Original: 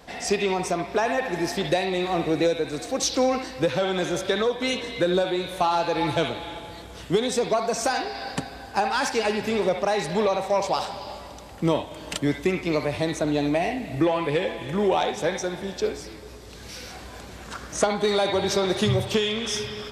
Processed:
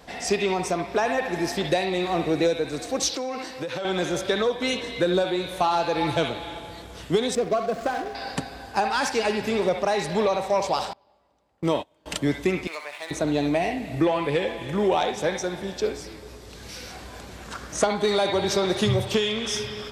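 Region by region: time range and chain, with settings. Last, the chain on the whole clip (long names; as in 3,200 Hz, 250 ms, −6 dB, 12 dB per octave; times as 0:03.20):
0:03.09–0:03.85: high-pass filter 250 Hz 6 dB per octave + downward compressor 12 to 1, threshold −26 dBFS
0:07.35–0:08.15: running median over 15 samples + Butterworth band-reject 900 Hz, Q 5 + high-shelf EQ 7,200 Hz −9 dB
0:10.93–0:12.06: noise gate −31 dBFS, range −24 dB + low-shelf EQ 180 Hz −6.5 dB + one half of a high-frequency compander decoder only
0:12.67–0:13.11: running median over 9 samples + high-pass filter 1,200 Hz + high-shelf EQ 8,600 Hz −5 dB
whole clip: no processing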